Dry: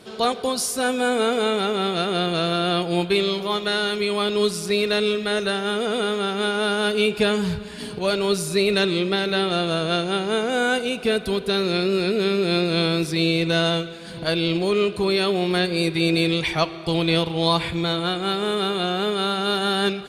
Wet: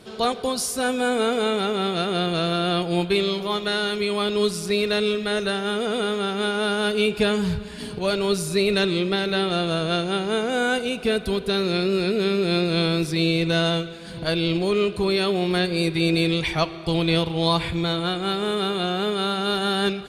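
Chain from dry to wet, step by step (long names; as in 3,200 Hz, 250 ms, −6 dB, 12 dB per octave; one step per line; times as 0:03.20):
low-shelf EQ 100 Hz +8.5 dB
level −1.5 dB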